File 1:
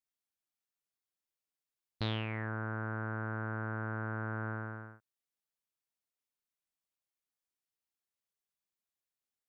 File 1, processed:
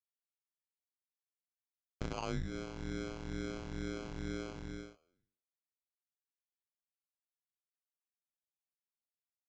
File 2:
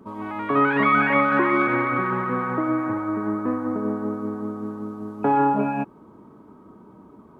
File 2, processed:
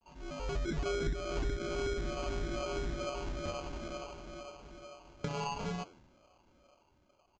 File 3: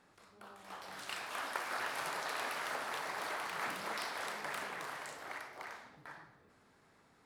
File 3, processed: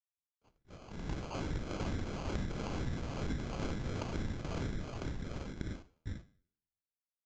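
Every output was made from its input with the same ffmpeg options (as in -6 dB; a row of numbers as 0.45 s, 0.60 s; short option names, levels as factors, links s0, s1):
-af "afftfilt=real='re*pow(10,12/40*sin(2*PI*(0.69*log(max(b,1)*sr/1024/100)/log(2)-(-2.2)*(pts-256)/sr)))':imag='im*pow(10,12/40*sin(2*PI*(0.69*log(max(b,1)*sr/1024/100)/log(2)-(-2.2)*(pts-256)/sr)))':win_size=1024:overlap=0.75,agate=range=0.00316:threshold=0.00316:ratio=16:detection=peak,dynaudnorm=f=140:g=13:m=2.51,flanger=delay=9.5:depth=3.5:regen=-90:speed=1.9:shape=triangular,highpass=f=1900:t=q:w=8.8,acrusher=samples=24:mix=1:aa=0.000001,acompressor=threshold=0.0501:ratio=6,aresample=16000,aresample=44100,volume=0.473"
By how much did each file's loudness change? -4.0 LU, -15.5 LU, 0.0 LU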